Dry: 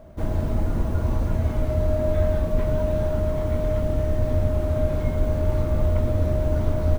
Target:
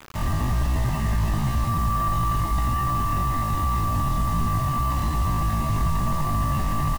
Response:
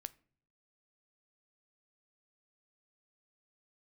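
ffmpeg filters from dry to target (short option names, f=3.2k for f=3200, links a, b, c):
-filter_complex "[0:a]aeval=exprs='0.398*(cos(1*acos(clip(val(0)/0.398,-1,1)))-cos(1*PI/2))+0.00355*(cos(3*acos(clip(val(0)/0.398,-1,1)))-cos(3*PI/2))+0.0141*(cos(6*acos(clip(val(0)/0.398,-1,1)))-cos(6*PI/2))':c=same,equalizer=f=94:t=o:w=0.31:g=-9,aecho=1:1:2:0.96,asplit=2[a][b];[b]aecho=0:1:18|32:0.133|0.282[c];[a][c]amix=inputs=2:normalize=0,alimiter=limit=-14dB:level=0:latency=1:release=12,asetrate=83250,aresample=44100,atempo=0.529732,acrusher=bits=5:mix=0:aa=0.000001,volume=-2dB"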